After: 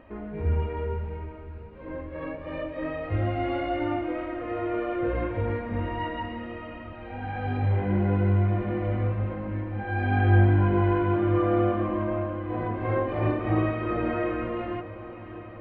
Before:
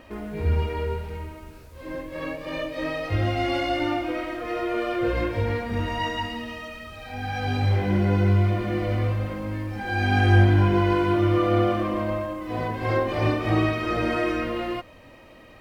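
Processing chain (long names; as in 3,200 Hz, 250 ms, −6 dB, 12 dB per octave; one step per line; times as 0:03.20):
Gaussian smoothing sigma 3.5 samples
feedback delay with all-pass diffusion 612 ms, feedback 73%, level −15.5 dB
level −2.5 dB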